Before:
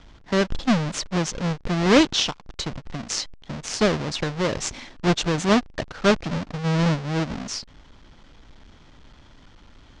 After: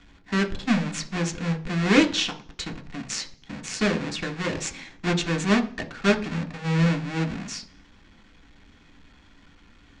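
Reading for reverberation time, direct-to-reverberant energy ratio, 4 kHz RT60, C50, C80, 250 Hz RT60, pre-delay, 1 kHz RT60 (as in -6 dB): 0.45 s, 4.0 dB, 0.55 s, 15.5 dB, 20.5 dB, 0.70 s, 3 ms, 0.40 s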